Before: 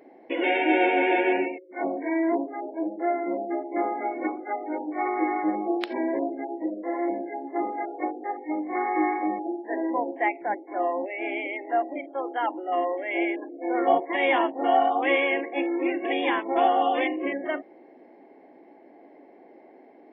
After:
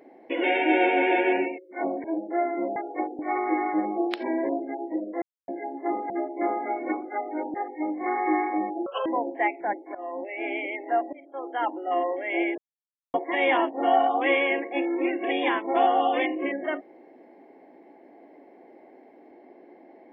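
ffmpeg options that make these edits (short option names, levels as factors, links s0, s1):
-filter_complex "[0:a]asplit=14[s0][s1][s2][s3][s4][s5][s6][s7][s8][s9][s10][s11][s12][s13];[s0]atrim=end=2.042[s14];[s1]atrim=start=2.728:end=3.452[s15];[s2]atrim=start=7.798:end=8.232[s16];[s3]atrim=start=4.888:end=6.92,asetpts=PTS-STARTPTS,afade=t=out:st=2.028:d=0.004:c=hsin[s17];[s4]atrim=start=6.92:end=7.18,asetpts=PTS-STARTPTS,volume=0[s18];[s5]atrim=start=7.18:end=7.802,asetpts=PTS-STARTPTS,afade=t=in:d=0.004:c=hsin[s19];[s6]atrim=start=3.448:end=4.892[s20];[s7]atrim=start=8.228:end=9.554[s21];[s8]atrim=start=9.55:end=9.87,asetpts=PTS-STARTPTS,asetrate=71001,aresample=44100,atrim=end_sample=8765,asetpts=PTS-STARTPTS[s22];[s9]atrim=start=9.866:end=10.76,asetpts=PTS-STARTPTS,afade=t=out:st=0.89:d=0.004:c=hsin:silence=0.112202[s23];[s10]atrim=start=10.76:end=11.94,asetpts=PTS-STARTPTS,afade=t=in:d=0.64:c=qsin:silence=0.112202,afade=t=out:st=1.176:d=0.004:c=hsin:silence=0.125893[s24];[s11]atrim=start=11.94:end=13.39,asetpts=PTS-STARTPTS,afade=t=in:d=0.51:silence=0.125893,afade=t=out:st=1.446:d=0.004:c=hsin[s25];[s12]atrim=start=13.39:end=13.95,asetpts=PTS-STARTPTS,volume=0[s26];[s13]atrim=start=13.95,asetpts=PTS-STARTPTS,afade=t=in:d=0.004:c=hsin[s27];[s14][s15]acrossfade=d=0.004:c1=hsin:c2=hsin[s28];[s28][s16]acrossfade=d=0.004:c1=hsin:c2=hsin[s29];[s17][s18][s19]concat=n=3:v=0:a=1[s30];[s29][s30]acrossfade=d=0.004:c1=hsin:c2=hsin[s31];[s31][s20]acrossfade=d=0.004:c1=hsin:c2=hsin[s32];[s32][s21]acrossfade=d=0.004:c1=hsin:c2=hsin[s33];[s33][s22]acrossfade=d=0.004:c1=hsin:c2=hsin[s34];[s23][s24][s25][s26][s27]concat=n=5:v=0:a=1[s35];[s34][s35]acrossfade=d=0.004:c1=hsin:c2=hsin"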